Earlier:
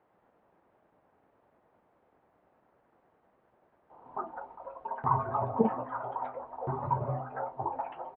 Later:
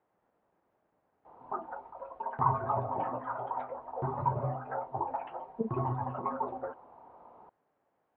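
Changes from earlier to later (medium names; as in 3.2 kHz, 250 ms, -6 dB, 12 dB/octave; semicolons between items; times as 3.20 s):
speech -7.5 dB; background: entry -2.65 s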